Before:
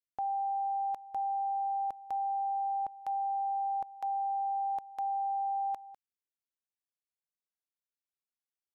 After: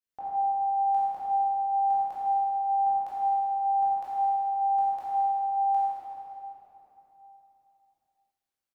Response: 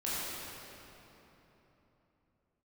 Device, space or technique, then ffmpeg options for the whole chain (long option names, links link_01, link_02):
cave: -filter_complex "[0:a]aecho=1:1:168:0.178[link_01];[1:a]atrim=start_sample=2205[link_02];[link_01][link_02]afir=irnorm=-1:irlink=0"